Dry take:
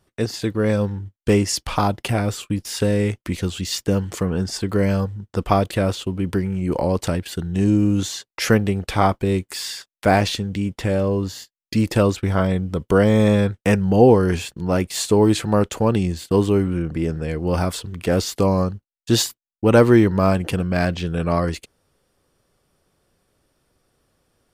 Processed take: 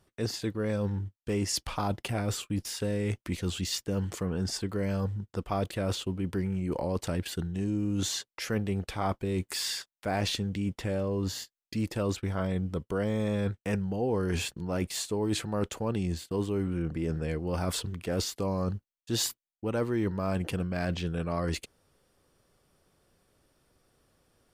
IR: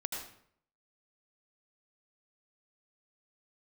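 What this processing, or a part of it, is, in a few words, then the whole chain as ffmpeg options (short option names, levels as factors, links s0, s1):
compression on the reversed sound: -af "areverse,acompressor=threshold=0.0501:ratio=5,areverse,volume=0.794"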